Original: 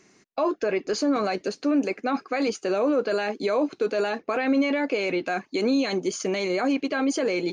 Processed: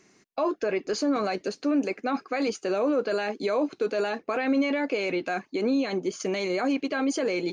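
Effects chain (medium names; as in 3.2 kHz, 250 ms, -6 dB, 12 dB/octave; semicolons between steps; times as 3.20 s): 5.50–6.19 s: treble shelf 3.3 kHz -> 4.9 kHz -9.5 dB; trim -2 dB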